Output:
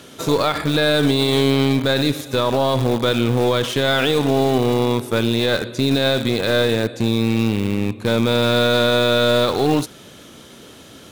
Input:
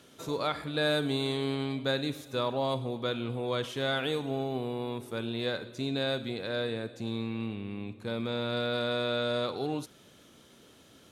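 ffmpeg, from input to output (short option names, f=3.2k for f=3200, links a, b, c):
-filter_complex "[0:a]asplit=2[a][b];[b]acrusher=bits=3:dc=4:mix=0:aa=0.000001,volume=-7.5dB[c];[a][c]amix=inputs=2:normalize=0,alimiter=level_in=21dB:limit=-1dB:release=50:level=0:latency=1,volume=-6dB"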